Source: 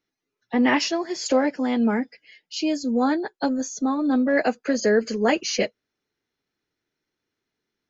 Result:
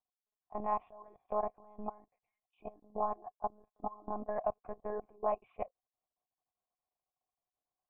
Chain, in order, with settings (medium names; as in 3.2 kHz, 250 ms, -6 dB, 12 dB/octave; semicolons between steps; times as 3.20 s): monotone LPC vocoder at 8 kHz 210 Hz; level held to a coarse grid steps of 21 dB; cascade formant filter a; trim +7 dB